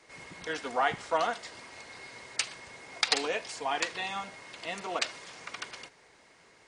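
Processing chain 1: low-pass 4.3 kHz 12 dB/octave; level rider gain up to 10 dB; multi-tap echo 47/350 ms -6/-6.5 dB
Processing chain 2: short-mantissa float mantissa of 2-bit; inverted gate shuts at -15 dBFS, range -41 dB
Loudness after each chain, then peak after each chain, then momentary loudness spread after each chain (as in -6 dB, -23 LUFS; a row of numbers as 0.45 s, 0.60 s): -23.5 LUFS, -37.0 LUFS; -3.0 dBFS, -9.0 dBFS; 15 LU, 14 LU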